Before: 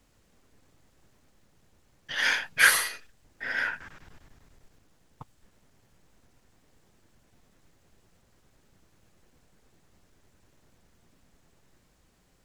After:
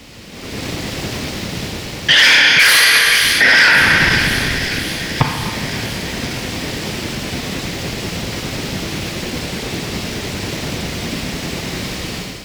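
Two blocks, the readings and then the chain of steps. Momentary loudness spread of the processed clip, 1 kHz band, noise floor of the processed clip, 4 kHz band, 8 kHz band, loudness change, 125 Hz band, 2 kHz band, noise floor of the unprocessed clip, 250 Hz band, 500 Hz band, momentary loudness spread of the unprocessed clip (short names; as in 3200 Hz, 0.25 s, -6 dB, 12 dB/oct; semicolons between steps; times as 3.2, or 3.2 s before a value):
16 LU, +17.0 dB, -29 dBFS, +22.5 dB, +14.5 dB, +10.5 dB, +35.0 dB, +17.0 dB, -65 dBFS, +34.5 dB, +24.5 dB, 16 LU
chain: AGC gain up to 15 dB; low shelf 420 Hz +10.5 dB; in parallel at +0.5 dB: compressor, threshold -31 dBFS, peak gain reduction 19.5 dB; on the sum: HPF 210 Hz 6 dB/oct; Schroeder reverb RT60 1.9 s, combs from 27 ms, DRR 8 dB; soft clip -17 dBFS, distortion -7 dB; band shelf 3300 Hz +8.5 dB; on a send: thin delay 0.531 s, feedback 66%, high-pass 2300 Hz, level -15.5 dB; on the sum: maximiser +17.5 dB; gain -1 dB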